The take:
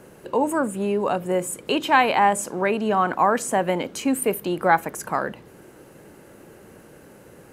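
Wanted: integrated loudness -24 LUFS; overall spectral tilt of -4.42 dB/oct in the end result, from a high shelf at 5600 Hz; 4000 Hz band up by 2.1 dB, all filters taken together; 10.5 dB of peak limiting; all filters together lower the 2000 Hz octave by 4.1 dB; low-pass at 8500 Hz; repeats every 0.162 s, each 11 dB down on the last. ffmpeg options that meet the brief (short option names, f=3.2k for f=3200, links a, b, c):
-af "lowpass=8.5k,equalizer=f=2k:t=o:g=-7,equalizer=f=4k:t=o:g=8.5,highshelf=f=5.6k:g=-4.5,alimiter=limit=-15.5dB:level=0:latency=1,aecho=1:1:162|324|486:0.282|0.0789|0.0221,volume=2dB"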